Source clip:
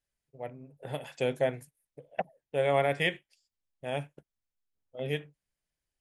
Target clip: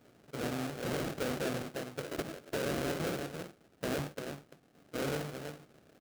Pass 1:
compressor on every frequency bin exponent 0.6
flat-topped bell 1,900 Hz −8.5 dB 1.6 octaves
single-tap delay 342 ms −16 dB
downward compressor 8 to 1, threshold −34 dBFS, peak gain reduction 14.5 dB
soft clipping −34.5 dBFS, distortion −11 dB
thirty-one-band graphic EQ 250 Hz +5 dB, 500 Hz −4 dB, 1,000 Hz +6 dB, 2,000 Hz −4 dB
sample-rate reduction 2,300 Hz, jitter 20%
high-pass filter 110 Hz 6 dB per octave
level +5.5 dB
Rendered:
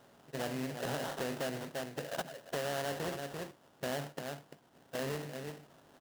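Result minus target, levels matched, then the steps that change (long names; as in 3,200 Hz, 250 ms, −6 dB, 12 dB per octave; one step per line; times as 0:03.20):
sample-rate reduction: distortion −15 dB; downward compressor: peak gain reduction +6 dB
change: downward compressor 8 to 1, threshold −27 dBFS, peak gain reduction 8 dB
change: sample-rate reduction 1,000 Hz, jitter 20%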